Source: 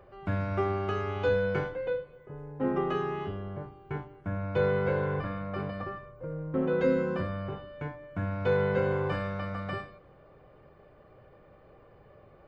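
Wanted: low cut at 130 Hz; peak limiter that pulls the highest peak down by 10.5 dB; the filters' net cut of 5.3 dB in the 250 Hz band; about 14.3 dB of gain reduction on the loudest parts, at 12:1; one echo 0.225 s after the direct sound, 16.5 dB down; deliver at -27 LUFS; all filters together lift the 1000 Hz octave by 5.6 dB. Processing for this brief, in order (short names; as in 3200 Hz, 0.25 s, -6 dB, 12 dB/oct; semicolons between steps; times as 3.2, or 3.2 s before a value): HPF 130 Hz; bell 250 Hz -7.5 dB; bell 1000 Hz +7.5 dB; compressor 12:1, threshold -36 dBFS; limiter -35 dBFS; echo 0.225 s -16.5 dB; gain +16.5 dB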